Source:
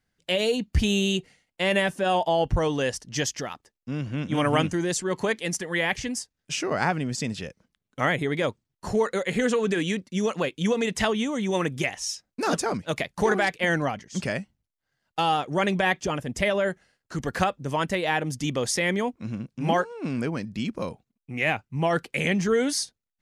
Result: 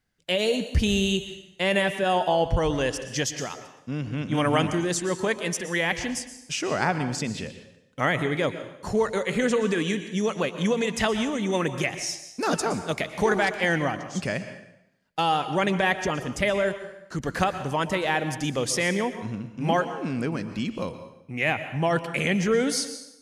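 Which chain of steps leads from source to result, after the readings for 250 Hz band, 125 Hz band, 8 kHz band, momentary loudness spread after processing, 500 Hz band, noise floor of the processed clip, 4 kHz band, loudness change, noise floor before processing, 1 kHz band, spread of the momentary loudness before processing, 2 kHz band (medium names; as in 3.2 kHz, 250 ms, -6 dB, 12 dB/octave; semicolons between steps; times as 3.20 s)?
+0.5 dB, +0.5 dB, +0.5 dB, 10 LU, +0.5 dB, -55 dBFS, +0.5 dB, +0.5 dB, -84 dBFS, +0.5 dB, 9 LU, +0.5 dB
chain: plate-style reverb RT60 0.83 s, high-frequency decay 0.9×, pre-delay 105 ms, DRR 10 dB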